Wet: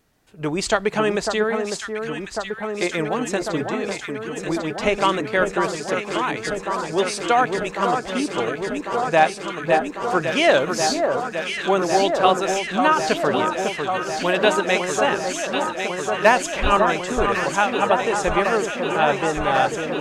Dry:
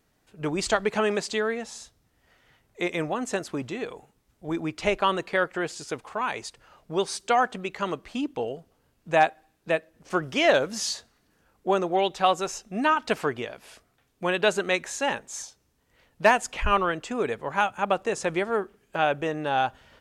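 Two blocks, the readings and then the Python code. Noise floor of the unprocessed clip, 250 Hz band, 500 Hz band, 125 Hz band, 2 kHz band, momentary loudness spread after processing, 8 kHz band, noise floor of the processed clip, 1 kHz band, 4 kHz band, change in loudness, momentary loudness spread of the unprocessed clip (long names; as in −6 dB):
−69 dBFS, +6.5 dB, +6.5 dB, +6.0 dB, +6.0 dB, 8 LU, +6.0 dB, −34 dBFS, +6.5 dB, +6.0 dB, +5.5 dB, 12 LU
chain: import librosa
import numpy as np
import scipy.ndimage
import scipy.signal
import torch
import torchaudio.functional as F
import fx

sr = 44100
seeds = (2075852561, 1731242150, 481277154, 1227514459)

y = fx.echo_alternate(x, sr, ms=549, hz=1500.0, feedback_pct=89, wet_db=-5)
y = y * librosa.db_to_amplitude(4.0)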